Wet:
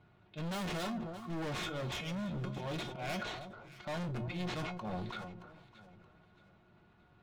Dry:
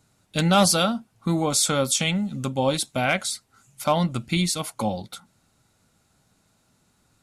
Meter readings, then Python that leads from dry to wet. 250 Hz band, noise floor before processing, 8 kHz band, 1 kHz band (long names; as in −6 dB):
−14.5 dB, −66 dBFS, −27.5 dB, −16.0 dB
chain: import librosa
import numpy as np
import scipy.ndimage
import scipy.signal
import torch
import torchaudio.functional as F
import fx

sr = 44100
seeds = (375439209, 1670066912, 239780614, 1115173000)

p1 = scipy.signal.medfilt(x, 9)
p2 = scipy.signal.sosfilt(scipy.signal.butter(4, 4100.0, 'lowpass', fs=sr, output='sos'), p1)
p3 = fx.hum_notches(p2, sr, base_hz=60, count=2)
p4 = fx.dynamic_eq(p3, sr, hz=1400.0, q=0.75, threshold_db=-38.0, ratio=4.0, max_db=-4)
p5 = fx.auto_swell(p4, sr, attack_ms=257.0)
p6 = 10.0 ** (-27.5 / 20.0) * np.tanh(p5 / 10.0 ** (-27.5 / 20.0))
p7 = fx.notch_comb(p6, sr, f0_hz=260.0)
p8 = np.clip(p7, -10.0 ** (-38.0 / 20.0), 10.0 ** (-38.0 / 20.0))
p9 = fx.comb_fb(p8, sr, f0_hz=360.0, decay_s=0.19, harmonics='all', damping=0.0, mix_pct=70)
p10 = p9 + fx.echo_alternate(p9, sr, ms=312, hz=1200.0, feedback_pct=58, wet_db=-11.5, dry=0)
p11 = fx.sustainer(p10, sr, db_per_s=40.0)
y = p11 * 10.0 ** (10.5 / 20.0)